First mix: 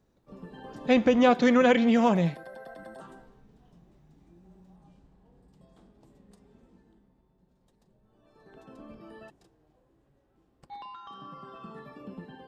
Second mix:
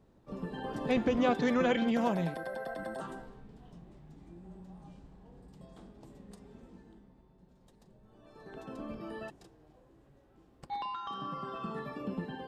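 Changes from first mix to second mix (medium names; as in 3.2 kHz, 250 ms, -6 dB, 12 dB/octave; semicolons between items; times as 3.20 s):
speech -8.0 dB; background +5.5 dB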